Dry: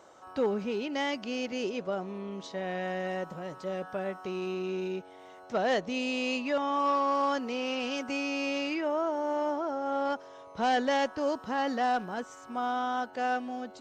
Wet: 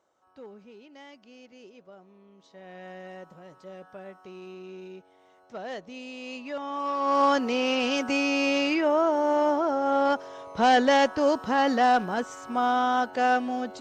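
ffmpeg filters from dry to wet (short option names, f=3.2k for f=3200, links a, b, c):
-af "volume=7dB,afade=t=in:st=2.38:d=0.51:silence=0.398107,afade=t=in:st=6.18:d=0.79:silence=0.446684,afade=t=in:st=6.97:d=0.26:silence=0.354813"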